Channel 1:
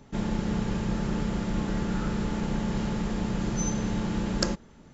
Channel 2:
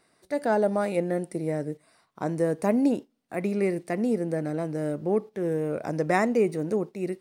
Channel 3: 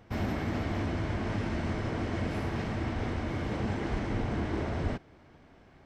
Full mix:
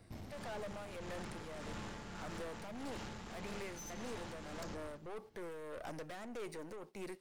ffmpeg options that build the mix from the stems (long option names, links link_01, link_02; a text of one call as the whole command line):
ffmpeg -i stem1.wav -i stem2.wav -i stem3.wav -filter_complex "[0:a]adelay=200,volume=-3.5dB[link_01];[1:a]volume=-1.5dB[link_02];[2:a]equalizer=frequency=1500:width_type=o:width=2.6:gain=-14.5,volume=-1.5dB[link_03];[link_01][link_02][link_03]amix=inputs=3:normalize=0,acrossover=split=630|6900[link_04][link_05][link_06];[link_04]acompressor=threshold=-41dB:ratio=4[link_07];[link_05]acompressor=threshold=-36dB:ratio=4[link_08];[link_06]acompressor=threshold=-57dB:ratio=4[link_09];[link_07][link_08][link_09]amix=inputs=3:normalize=0,aeval=exprs='(tanh(112*val(0)+0.45)-tanh(0.45))/112':channel_layout=same,tremolo=f=1.7:d=0.4" out.wav